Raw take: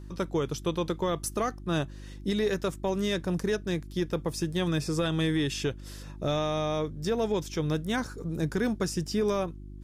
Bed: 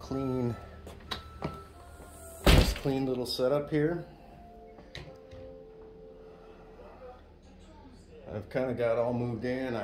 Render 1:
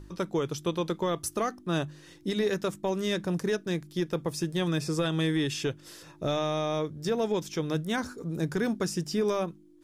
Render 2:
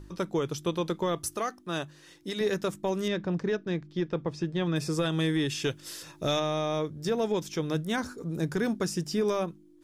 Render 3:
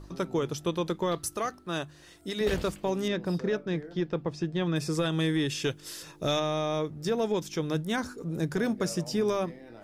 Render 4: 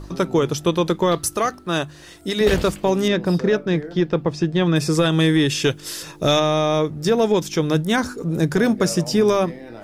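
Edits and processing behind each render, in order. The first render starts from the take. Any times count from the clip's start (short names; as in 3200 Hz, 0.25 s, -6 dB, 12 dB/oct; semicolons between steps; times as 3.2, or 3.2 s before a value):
de-hum 50 Hz, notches 5
1.36–2.41 low shelf 360 Hz -9 dB; 3.08–4.76 air absorption 170 m; 5.64–6.4 high shelf 2200 Hz +8.5 dB
add bed -15 dB
gain +10.5 dB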